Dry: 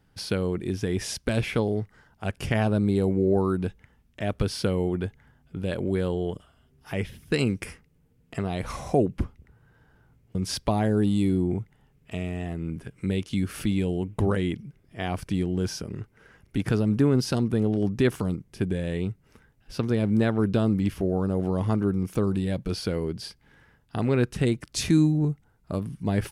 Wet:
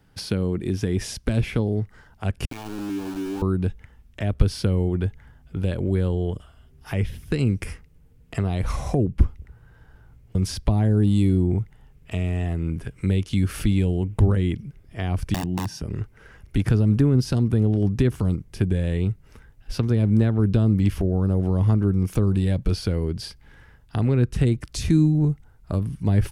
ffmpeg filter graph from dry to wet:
ffmpeg -i in.wav -filter_complex "[0:a]asettb=1/sr,asplit=3[link_01][link_02][link_03];[link_01]atrim=end=2.454[link_04];[link_02]atrim=start=2.45:end=3.42,asetpts=PTS-STARTPTS,afade=type=in:duration=0.004:curve=qsin,afade=type=out:start_time=0.966:duration=0.004:curve=qsin,asplit=3[link_05][link_06][link_07];[link_05]bandpass=frequency=300:width_type=q:width=8,volume=0dB[link_08];[link_06]bandpass=frequency=870:width_type=q:width=8,volume=-6dB[link_09];[link_07]bandpass=frequency=2240:width_type=q:width=8,volume=-9dB[link_10];[link_08][link_09][link_10]amix=inputs=3:normalize=0,aeval=exprs='val(0)*gte(abs(val(0)),0.0141)':channel_layout=same,bandreject=frequency=2000:width=5.5[link_11];[link_03]atrim=start=3.416[link_12];[link_04][link_11]acrossfade=duration=0.004:curve1=hsin:curve2=qsin[link_13];[link_13][link_12]acrossfade=duration=0.004:curve1=qsin:curve2=hsin,asettb=1/sr,asplit=3[link_14][link_15][link_16];[link_14]atrim=end=15.344[link_17];[link_15]atrim=start=15.34:end=15.82,asetpts=PTS-STARTPTS,afade=type=in:duration=0.004:curve=qsin,afade=type=out:start_time=0.476:duration=0.004:curve=qsin,aeval=exprs='(mod(9.44*val(0)+1,2)-1)/9.44':channel_layout=same,highpass=160,aecho=1:1:1.1:0.52,atrim=end_sample=21168[link_18];[link_16]atrim=start=15.816[link_19];[link_17][link_18]acrossfade=duration=0.004:curve1=hsin:curve2=qsin[link_20];[link_20][link_19]acrossfade=duration=0.004:curve1=qsin:curve2=hsin,asubboost=boost=3:cutoff=96,acrossover=split=330[link_21][link_22];[link_22]acompressor=threshold=-37dB:ratio=4[link_23];[link_21][link_23]amix=inputs=2:normalize=0,volume=5dB" out.wav

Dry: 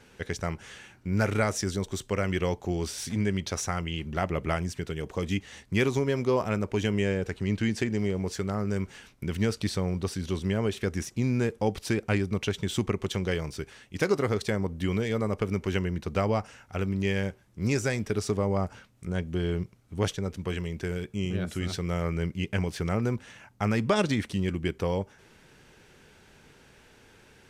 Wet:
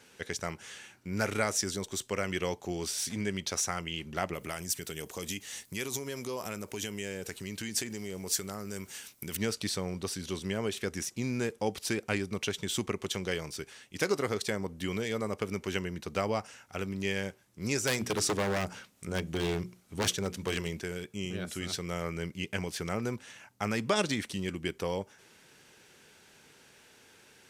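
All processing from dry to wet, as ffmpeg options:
ffmpeg -i in.wav -filter_complex "[0:a]asettb=1/sr,asplit=3[link_01][link_02][link_03];[link_01]atrim=end=4.334[link_04];[link_02]atrim=start=4.33:end=9.37,asetpts=PTS-STARTPTS,afade=type=in:duration=0.004:curve=qsin,afade=type=out:start_time=5.036:duration=0.004:curve=qsin,acompressor=threshold=-29dB:ratio=4:attack=3.2:release=140:knee=1:detection=peak,aemphasis=mode=production:type=50fm[link_05];[link_03]atrim=start=9.366[link_06];[link_04][link_05]acrossfade=duration=0.004:curve1=hsin:curve2=qsin[link_07];[link_07][link_06]acrossfade=duration=0.004:curve1=qsin:curve2=hsin,asettb=1/sr,asplit=3[link_08][link_09][link_10];[link_08]atrim=end=17.874[link_11];[link_09]atrim=start=17.87:end=20.8,asetpts=PTS-STARTPTS,afade=type=in:duration=0.004:curve=qsin,afade=type=out:start_time=2.926:duration=0.004:curve=qsin,bandreject=frequency=60:width_type=h:width=6,bandreject=frequency=120:width_type=h:width=6,bandreject=frequency=180:width_type=h:width=6,bandreject=frequency=240:width_type=h:width=6,bandreject=frequency=300:width_type=h:width=6,bandreject=frequency=360:width_type=h:width=6,acontrast=25,aeval=exprs='0.112*(abs(mod(val(0)/0.112+3,4)-2)-1)':channel_layout=same[link_12];[link_10]atrim=start=20.796[link_13];[link_11][link_12]acrossfade=duration=0.004:curve1=hsin:curve2=qsin[link_14];[link_14][link_13]acrossfade=duration=0.004:curve1=qsin:curve2=hsin,highpass=frequency=200:poles=1,highshelf=frequency=3500:gain=8.5,volume=-3.5dB" out.wav

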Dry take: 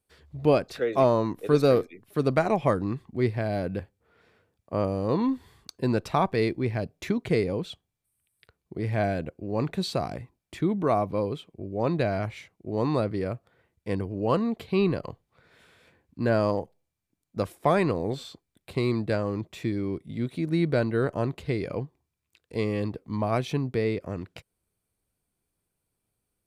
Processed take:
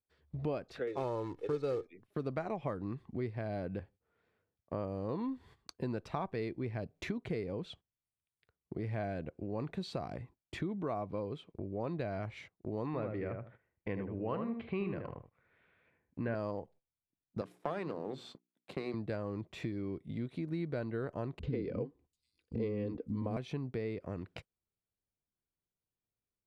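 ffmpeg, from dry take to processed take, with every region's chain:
ffmpeg -i in.wav -filter_complex "[0:a]asettb=1/sr,asplit=3[link_01][link_02][link_03];[link_01]atrim=end=0.874[link_04];[link_02]atrim=start=0.87:end=1.86,asetpts=PTS-STARTPTS,afade=type=in:duration=0.004:curve=qsin,afade=type=out:start_time=0.986:duration=0.004:curve=qsin,acrusher=bits=5:mode=log:mix=0:aa=0.000001,aecho=1:1:2.3:0.61,atrim=end_sample=43659,adynamicsmooth=sensitivity=6:basefreq=6800[link_05];[link_03]atrim=start=1.856[link_06];[link_04][link_05]acrossfade=duration=0.004:curve1=hsin:curve2=qsin[link_07];[link_07][link_06]acrossfade=duration=0.004:curve1=qsin:curve2=hsin,asettb=1/sr,asplit=3[link_08][link_09][link_10];[link_08]atrim=end=12.864[link_11];[link_09]atrim=start=12.86:end=16.35,asetpts=PTS-STARTPTS,afade=type=in:duration=0.004:curve=qsin,afade=type=out:start_time=3.486:duration=0.004:curve=qsin,lowpass=frequency=2300:width_type=q:width=1.9,asplit=2[link_12][link_13];[link_13]adelay=77,lowpass=frequency=1700:poles=1,volume=-5dB,asplit=2[link_14][link_15];[link_15]adelay=77,lowpass=frequency=1700:poles=1,volume=0.18,asplit=2[link_16][link_17];[link_17]adelay=77,lowpass=frequency=1700:poles=1,volume=0.18[link_18];[link_12][link_14][link_16][link_18]amix=inputs=4:normalize=0,atrim=end_sample=153909[link_19];[link_10]atrim=start=16.346[link_20];[link_11][link_19]acrossfade=duration=0.004:curve1=hsin:curve2=qsin[link_21];[link_21][link_20]acrossfade=duration=0.004:curve1=qsin:curve2=hsin,asettb=1/sr,asplit=3[link_22][link_23][link_24];[link_22]atrim=end=17.414[link_25];[link_23]atrim=start=17.41:end=18.94,asetpts=PTS-STARTPTS,afade=type=in:duration=0.004:curve=qsin,afade=type=out:start_time=1.526:duration=0.004:curve=qsin,aeval=exprs='if(lt(val(0),0),0.447*val(0),val(0))':channel_layout=same,highpass=frequency=150:width=0.5412,highpass=frequency=150:width=1.3066,bandreject=frequency=60:width_type=h:width=6,bandreject=frequency=120:width_type=h:width=6,bandreject=frequency=180:width_type=h:width=6,bandreject=frequency=240:width_type=h:width=6,bandreject=frequency=300:width_type=h:width=6,bandreject=frequency=360:width_type=h:width=6,bandreject=frequency=420:width_type=h:width=6[link_26];[link_24]atrim=start=18.936[link_27];[link_25][link_26]acrossfade=duration=0.004:curve1=hsin:curve2=qsin[link_28];[link_28][link_27]acrossfade=duration=0.004:curve1=qsin:curve2=hsin,asettb=1/sr,asplit=3[link_29][link_30][link_31];[link_29]atrim=end=21.394[link_32];[link_30]atrim=start=21.39:end=23.37,asetpts=PTS-STARTPTS,afade=type=in:duration=0.004:curve=qsin,afade=type=out:start_time=1.976:duration=0.004:curve=qsin,lowshelf=frequency=550:width_type=q:width=1.5:gain=8,aecho=1:1:4:0.38,atrim=end_sample=87318,acrossover=split=260|6000[link_33][link_34][link_35];[link_34]adelay=40[link_36];[link_35]adelay=740[link_37];[link_33][link_36][link_37]amix=inputs=3:normalize=0,atrim=end_sample=87318[link_38];[link_31]atrim=start=23.366[link_39];[link_32][link_38]acrossfade=duration=0.004:curve1=hsin:curve2=qsin[link_40];[link_40][link_39]acrossfade=duration=0.004:curve1=qsin:curve2=hsin,aemphasis=mode=reproduction:type=50fm,agate=range=-16dB:threshold=-49dB:ratio=16:detection=peak,acompressor=threshold=-40dB:ratio=3,volume=1dB" out.wav

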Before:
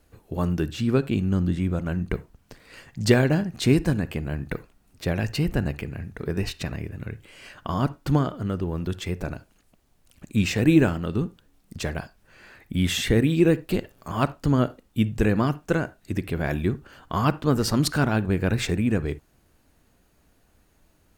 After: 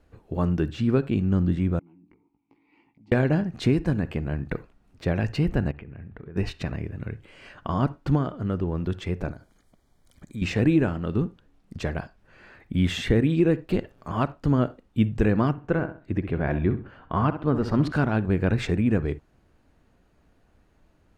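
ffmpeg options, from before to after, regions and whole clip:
ffmpeg -i in.wav -filter_complex "[0:a]asettb=1/sr,asplit=3[link_01][link_02][link_03];[link_01]atrim=end=1.794[link_04];[link_02]atrim=start=1.79:end=3.12,asetpts=PTS-STARTPTS,afade=type=in:duration=0.004:curve=qsin,afade=type=out:start_time=1.326:duration=0.004:curve=qsin,asplit=3[link_05][link_06][link_07];[link_05]bandpass=frequency=300:width_type=q:width=8,volume=0dB[link_08];[link_06]bandpass=frequency=870:width_type=q:width=8,volume=-6dB[link_09];[link_07]bandpass=frequency=2240:width_type=q:width=8,volume=-9dB[link_10];[link_08][link_09][link_10]amix=inputs=3:normalize=0,acompressor=threshold=-54dB:ratio=12:attack=3.2:release=140:knee=1:detection=peak,asplit=2[link_11][link_12];[link_12]adelay=18,volume=-4dB[link_13];[link_11][link_13]amix=inputs=2:normalize=0,atrim=end_sample=58653[link_14];[link_03]atrim=start=3.116[link_15];[link_04][link_14]acrossfade=duration=0.004:curve1=hsin:curve2=qsin[link_16];[link_16][link_15]acrossfade=duration=0.004:curve1=qsin:curve2=hsin,asettb=1/sr,asplit=3[link_17][link_18][link_19];[link_17]atrim=end=5.714[link_20];[link_18]atrim=start=5.71:end=6.36,asetpts=PTS-STARTPTS,afade=type=in:duration=0.004:curve=qsin,afade=type=out:start_time=0.646:duration=0.004:curve=qsin,lowpass=frequency=3200:width=0.5412,lowpass=frequency=3200:width=1.3066,acompressor=threshold=-37dB:ratio=12:attack=3.2:release=140:knee=1:detection=peak[link_21];[link_19]atrim=start=6.356[link_22];[link_20][link_21]acrossfade=duration=0.004:curve1=hsin:curve2=qsin[link_23];[link_23][link_22]acrossfade=duration=0.004:curve1=qsin:curve2=hsin,asettb=1/sr,asplit=3[link_24][link_25][link_26];[link_24]atrim=end=9.314[link_27];[link_25]atrim=start=9.31:end=10.42,asetpts=PTS-STARTPTS,afade=type=in:duration=0.004:curve=qsin,afade=type=out:start_time=1.106:duration=0.004:curve=qsin,highshelf=frequency=5200:gain=11,acompressor=threshold=-42dB:ratio=2:attack=3.2:release=140:knee=1:detection=peak,asuperstop=centerf=2700:order=8:qfactor=5.1[link_28];[link_26]atrim=start=10.416[link_29];[link_27][link_28]acrossfade=duration=0.004:curve1=hsin:curve2=qsin[link_30];[link_30][link_29]acrossfade=duration=0.004:curve1=qsin:curve2=hsin,asettb=1/sr,asplit=3[link_31][link_32][link_33];[link_31]atrim=end=15.514[link_34];[link_32]atrim=start=15.51:end=17.92,asetpts=PTS-STARTPTS,afade=type=in:duration=0.004:curve=qsin,afade=type=out:start_time=2.406:duration=0.004:curve=qsin,bass=frequency=250:gain=0,treble=frequency=4000:gain=-14,asplit=2[link_35][link_36];[link_36]adelay=65,lowpass=frequency=3900:poles=1,volume=-10.5dB,asplit=2[link_37][link_38];[link_38]adelay=65,lowpass=frequency=3900:poles=1,volume=0.31,asplit=2[link_39][link_40];[link_40]adelay=65,lowpass=frequency=3900:poles=1,volume=0.31[link_41];[link_35][link_37][link_39][link_41]amix=inputs=4:normalize=0,atrim=end_sample=106281[link_42];[link_33]atrim=start=17.916[link_43];[link_34][link_42]acrossfade=duration=0.004:curve1=hsin:curve2=qsin[link_44];[link_44][link_43]acrossfade=duration=0.004:curve1=qsin:curve2=hsin,aemphasis=mode=reproduction:type=75fm,alimiter=limit=-10dB:level=0:latency=1:release=378" out.wav

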